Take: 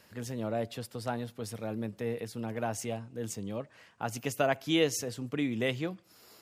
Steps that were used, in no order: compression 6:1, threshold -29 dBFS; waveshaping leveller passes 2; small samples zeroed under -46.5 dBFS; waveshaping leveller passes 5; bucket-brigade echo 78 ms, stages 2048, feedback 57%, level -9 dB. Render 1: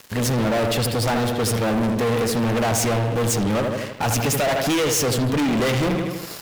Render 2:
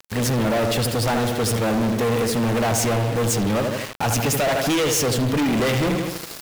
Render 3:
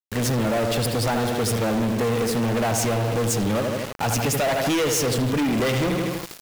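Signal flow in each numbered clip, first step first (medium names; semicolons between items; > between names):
compression > first waveshaping leveller > bucket-brigade echo > second waveshaping leveller > small samples zeroed; compression > bucket-brigade echo > first waveshaping leveller > small samples zeroed > second waveshaping leveller; first waveshaping leveller > bucket-brigade echo > compression > small samples zeroed > second waveshaping leveller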